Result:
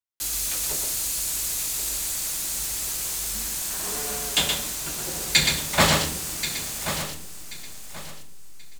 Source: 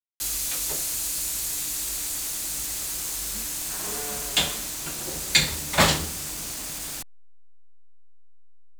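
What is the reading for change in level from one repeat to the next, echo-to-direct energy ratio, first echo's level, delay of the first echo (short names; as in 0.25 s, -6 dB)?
no steady repeat, -3.5 dB, -5.0 dB, 0.122 s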